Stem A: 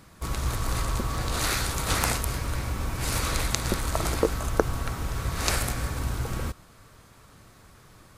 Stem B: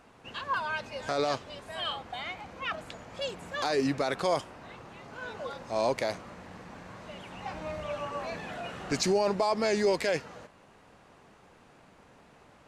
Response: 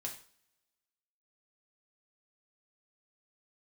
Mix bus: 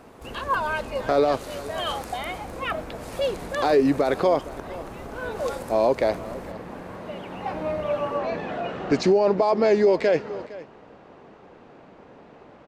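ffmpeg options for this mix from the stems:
-filter_complex "[0:a]acompressor=threshold=0.00794:ratio=2,volume=0.531,asplit=2[s0][s1];[s1]volume=0.316[s2];[1:a]lowpass=4400,equalizer=f=400:t=o:w=2.4:g=10,volume=1.33,asplit=2[s3][s4];[s4]volume=0.1[s5];[s2][s5]amix=inputs=2:normalize=0,aecho=0:1:461:1[s6];[s0][s3][s6]amix=inputs=3:normalize=0,alimiter=limit=0.299:level=0:latency=1:release=217"

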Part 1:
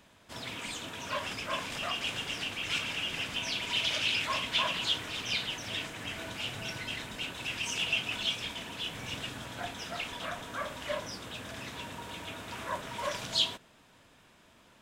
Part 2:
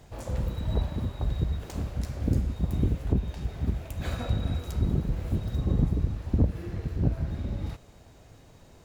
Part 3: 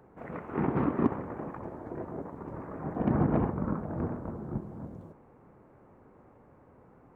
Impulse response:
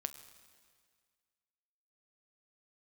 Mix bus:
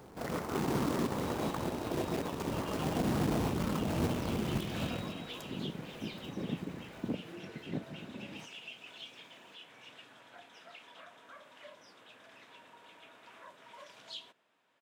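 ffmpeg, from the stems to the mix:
-filter_complex "[0:a]acrossover=split=360|3000[s0][s1][s2];[s1]acompressor=threshold=0.0126:ratio=6[s3];[s0][s3][s2]amix=inputs=3:normalize=0,highpass=f=110:w=0.5412,highpass=f=110:w=1.3066,bass=f=250:g=-14,treble=f=4000:g=-9,adelay=750,volume=0.133[s4];[1:a]highpass=f=180:w=0.5412,highpass=f=180:w=1.3066,adelay=700,volume=0.501[s5];[2:a]acrusher=bits=2:mode=log:mix=0:aa=0.000001,volume=0.841[s6];[s4][s6]amix=inputs=2:normalize=0,acontrast=35,alimiter=limit=0.141:level=0:latency=1:release=191,volume=1[s7];[s5][s7]amix=inputs=2:normalize=0,alimiter=limit=0.0631:level=0:latency=1:release=24"

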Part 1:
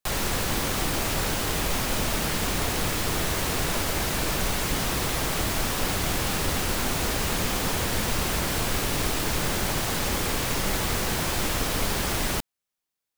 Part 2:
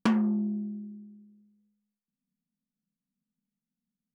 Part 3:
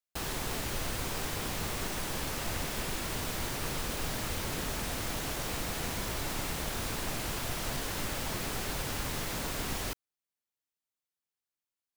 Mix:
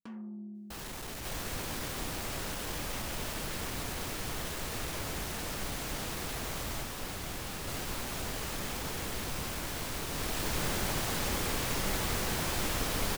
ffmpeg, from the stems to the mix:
-filter_complex "[0:a]adelay=1200,volume=0.501,afade=t=in:st=10.06:d=0.54:silence=0.446684[s0];[1:a]volume=0.178[s1];[2:a]asoftclip=type=tanh:threshold=0.0126,adelay=550,volume=1.19,asplit=3[s2][s3][s4];[s2]atrim=end=6.83,asetpts=PTS-STARTPTS,afade=t=out:st=6.826:d=0.004:c=hsin[s5];[s3]atrim=start=6.83:end=7.67,asetpts=PTS-STARTPTS,volume=0[s6];[s4]atrim=start=7.67,asetpts=PTS-STARTPTS,afade=t=in:d=0.004:c=hsin[s7];[s5][s6][s7]concat=n=3:v=0:a=1[s8];[s1][s8]amix=inputs=2:normalize=0,dynaudnorm=f=160:g=9:m=2,alimiter=level_in=5.01:limit=0.0631:level=0:latency=1,volume=0.2,volume=1[s9];[s0][s9]amix=inputs=2:normalize=0"

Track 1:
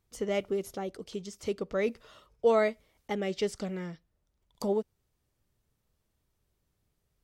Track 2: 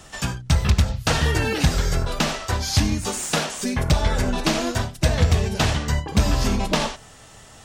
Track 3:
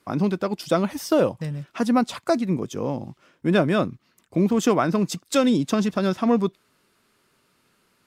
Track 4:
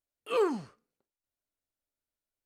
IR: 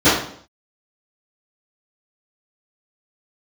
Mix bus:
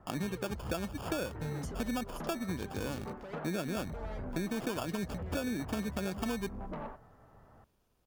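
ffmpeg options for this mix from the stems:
-filter_complex "[0:a]bandreject=f=8000:w=12,acompressor=threshold=0.0282:ratio=5,adelay=1500,volume=1.12[s0];[1:a]lowpass=f=1400:w=0.5412,lowpass=f=1400:w=1.3066,acompressor=threshold=0.0794:ratio=6,asoftclip=type=tanh:threshold=0.0596,volume=0.299[s1];[2:a]agate=range=0.501:threshold=0.00282:ratio=16:detection=peak,acrusher=samples=22:mix=1:aa=0.000001,volume=0.398[s2];[3:a]volume=0.501[s3];[s0][s3]amix=inputs=2:normalize=0,asoftclip=type=hard:threshold=0.0211,acompressor=threshold=0.00447:ratio=6,volume=1[s4];[s1][s2][s4]amix=inputs=3:normalize=0,acompressor=threshold=0.0251:ratio=6"

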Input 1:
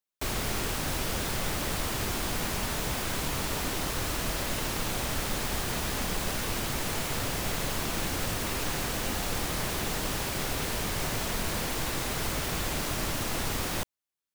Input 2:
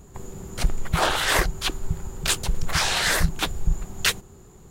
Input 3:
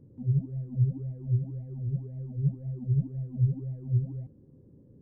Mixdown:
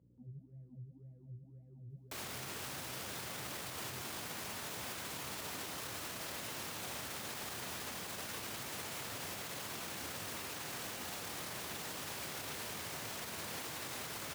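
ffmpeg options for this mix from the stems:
-filter_complex "[0:a]adelay=1900,volume=0.531[s0];[2:a]acompressor=threshold=0.0355:ratio=6,aeval=exprs='val(0)+0.00501*(sin(2*PI*60*n/s)+sin(2*PI*2*60*n/s)/2+sin(2*PI*3*60*n/s)/3+sin(2*PI*4*60*n/s)/4+sin(2*PI*5*60*n/s)/5)':c=same,volume=0.237[s1];[s0][s1]amix=inputs=2:normalize=0,alimiter=level_in=2.51:limit=0.0631:level=0:latency=1:release=37,volume=0.398,volume=1,highpass=f=81:w=0.5412,highpass=f=81:w=1.3066,lowshelf=f=460:g=-6"

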